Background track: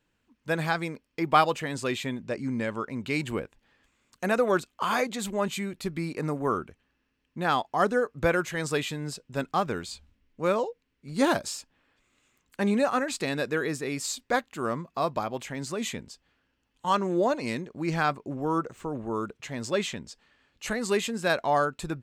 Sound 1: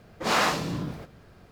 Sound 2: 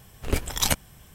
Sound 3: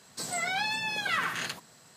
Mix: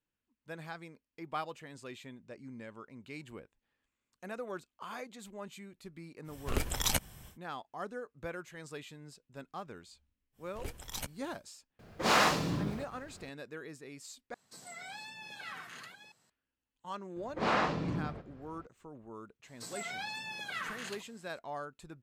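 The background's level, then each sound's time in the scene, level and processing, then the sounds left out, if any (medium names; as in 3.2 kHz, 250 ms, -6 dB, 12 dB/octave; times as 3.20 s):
background track -17 dB
6.24 s: add 2 -2 dB, fades 0.10 s + compression 2:1, threshold -26 dBFS
10.32 s: add 2 -15.5 dB, fades 0.10 s + saturation -13 dBFS
11.79 s: add 1 -2.5 dB
14.34 s: replace with 3 -16 dB + chunks repeated in reverse 445 ms, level -7.5 dB
17.16 s: add 1 -3 dB + tape spacing loss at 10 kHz 25 dB
19.43 s: add 3 -10 dB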